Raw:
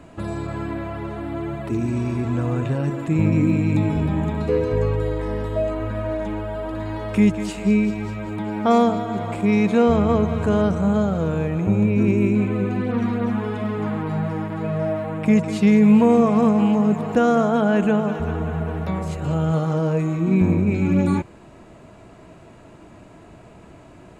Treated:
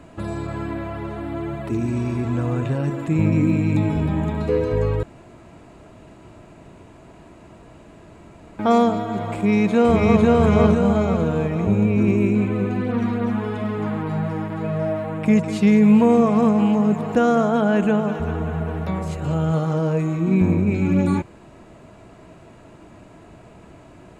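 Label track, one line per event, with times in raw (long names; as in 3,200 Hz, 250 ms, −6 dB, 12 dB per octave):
5.030000	8.590000	fill with room tone
9.340000	10.240000	delay throw 500 ms, feedback 50%, level −0.5 dB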